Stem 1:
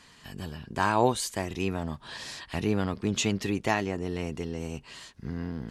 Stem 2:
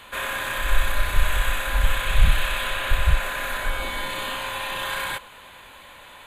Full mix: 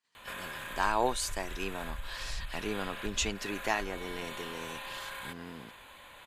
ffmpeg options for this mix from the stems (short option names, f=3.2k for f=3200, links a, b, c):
-filter_complex "[0:a]highpass=f=590:p=1,agate=range=-29dB:threshold=-53dB:ratio=16:detection=peak,volume=-2dB[a];[1:a]acompressor=threshold=-34dB:ratio=3,adelay=150,volume=-7dB[b];[a][b]amix=inputs=2:normalize=0"